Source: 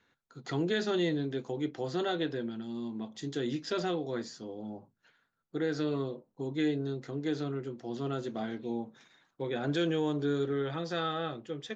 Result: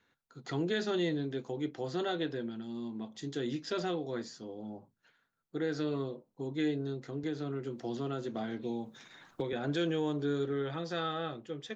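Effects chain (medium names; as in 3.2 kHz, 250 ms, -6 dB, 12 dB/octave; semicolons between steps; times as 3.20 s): 7.23–9.53 s: three bands compressed up and down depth 100%; trim -2 dB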